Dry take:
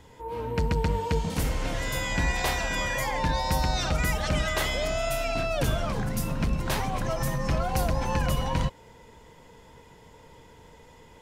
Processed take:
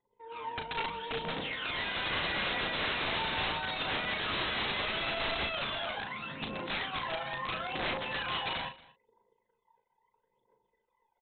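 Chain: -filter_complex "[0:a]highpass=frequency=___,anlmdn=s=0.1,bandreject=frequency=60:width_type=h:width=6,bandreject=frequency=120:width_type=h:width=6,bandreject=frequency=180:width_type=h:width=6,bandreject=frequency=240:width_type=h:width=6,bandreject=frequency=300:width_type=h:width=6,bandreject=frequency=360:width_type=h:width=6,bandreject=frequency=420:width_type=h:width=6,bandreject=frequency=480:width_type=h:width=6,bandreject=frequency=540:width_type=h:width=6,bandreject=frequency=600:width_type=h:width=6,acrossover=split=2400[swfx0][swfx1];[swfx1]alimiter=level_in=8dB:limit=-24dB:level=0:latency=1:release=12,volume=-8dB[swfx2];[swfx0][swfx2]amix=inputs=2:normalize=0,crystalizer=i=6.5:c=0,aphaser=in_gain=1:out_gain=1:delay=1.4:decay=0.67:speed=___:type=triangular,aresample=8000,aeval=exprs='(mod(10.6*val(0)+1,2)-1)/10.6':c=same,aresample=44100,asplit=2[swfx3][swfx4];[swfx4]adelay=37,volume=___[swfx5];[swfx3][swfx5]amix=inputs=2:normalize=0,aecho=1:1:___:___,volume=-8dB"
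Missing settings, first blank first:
360, 0.76, -6.5dB, 231, 0.0891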